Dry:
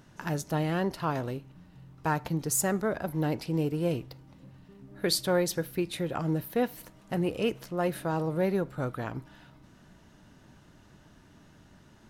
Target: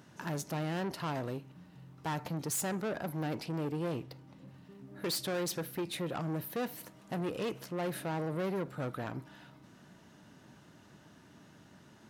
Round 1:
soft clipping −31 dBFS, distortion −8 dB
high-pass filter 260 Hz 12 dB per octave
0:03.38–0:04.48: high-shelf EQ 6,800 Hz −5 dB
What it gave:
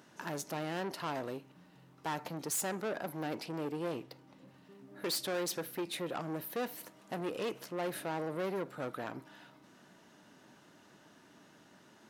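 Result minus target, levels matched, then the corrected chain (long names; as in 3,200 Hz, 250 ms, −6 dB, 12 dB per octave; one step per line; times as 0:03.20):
125 Hz band −6.5 dB
soft clipping −31 dBFS, distortion −8 dB
high-pass filter 120 Hz 12 dB per octave
0:03.38–0:04.48: high-shelf EQ 6,800 Hz −5 dB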